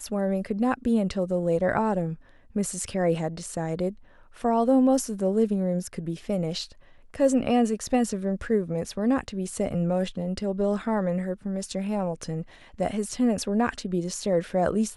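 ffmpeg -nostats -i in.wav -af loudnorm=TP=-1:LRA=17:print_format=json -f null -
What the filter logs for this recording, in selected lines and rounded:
"input_i" : "-26.7",
"input_tp" : "-9.7",
"input_lra" : "2.6",
"input_thresh" : "-36.9",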